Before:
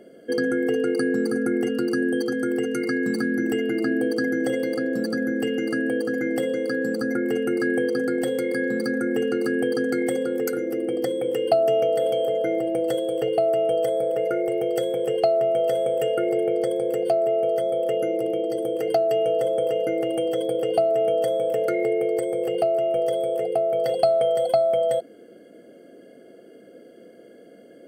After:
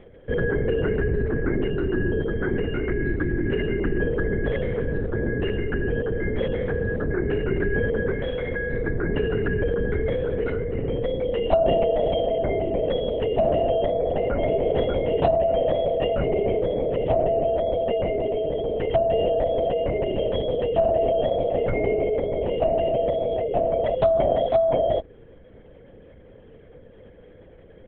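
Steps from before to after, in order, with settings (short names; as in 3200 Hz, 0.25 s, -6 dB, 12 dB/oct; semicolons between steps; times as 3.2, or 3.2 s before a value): 8.13–8.73 Bessel high-pass 390 Hz; LPC vocoder at 8 kHz whisper; 13.79–14.61 echo throw 0.59 s, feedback 10%, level -3.5 dB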